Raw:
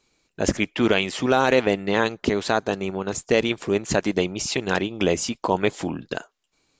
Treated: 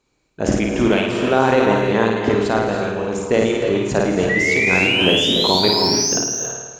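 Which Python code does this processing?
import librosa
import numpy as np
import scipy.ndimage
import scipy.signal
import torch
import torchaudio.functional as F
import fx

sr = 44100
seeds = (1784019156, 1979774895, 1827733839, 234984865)

p1 = fx.spec_paint(x, sr, seeds[0], shape='rise', start_s=4.29, length_s=1.89, low_hz=1900.0, high_hz=6600.0, level_db=-18.0)
p2 = p1 + fx.room_flutter(p1, sr, wall_m=9.2, rt60_s=0.73, dry=0)
p3 = fx.cheby_harmonics(p2, sr, harmonics=(5, 7), levels_db=(-42, -34), full_scale_db=-2.0)
p4 = fx.peak_eq(p3, sr, hz=4600.0, db=-7.5, octaves=2.5)
p5 = fx.rev_gated(p4, sr, seeds[1], gate_ms=350, shape='rising', drr_db=3.5)
p6 = fx.sustainer(p5, sr, db_per_s=45.0)
y = F.gain(torch.from_numpy(p6), 2.0).numpy()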